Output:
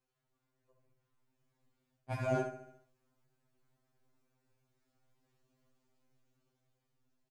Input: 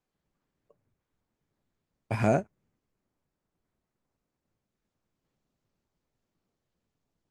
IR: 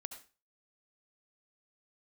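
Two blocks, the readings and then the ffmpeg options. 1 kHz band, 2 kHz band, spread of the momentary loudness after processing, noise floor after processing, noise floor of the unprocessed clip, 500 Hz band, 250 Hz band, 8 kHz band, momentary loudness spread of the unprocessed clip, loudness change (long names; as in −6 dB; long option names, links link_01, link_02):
−7.5 dB, −6.5 dB, 12 LU, −84 dBFS, below −85 dBFS, −6.5 dB, −10.5 dB, −8.0 dB, 7 LU, −8.5 dB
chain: -filter_complex "[0:a]areverse,acompressor=threshold=-35dB:ratio=12,areverse,aecho=1:1:71|142|213|284|355|426:0.282|0.161|0.0916|0.0522|0.0298|0.017,asplit=2[link_01][link_02];[link_02]acrusher=bits=5:mix=0:aa=0.5,volume=-10dB[link_03];[link_01][link_03]amix=inputs=2:normalize=0,dynaudnorm=framelen=260:gausssize=11:maxgain=5.5dB[link_04];[1:a]atrim=start_sample=2205,atrim=end_sample=3528[link_05];[link_04][link_05]afir=irnorm=-1:irlink=0,afftfilt=real='re*2.45*eq(mod(b,6),0)':imag='im*2.45*eq(mod(b,6),0)':win_size=2048:overlap=0.75,volume=3.5dB"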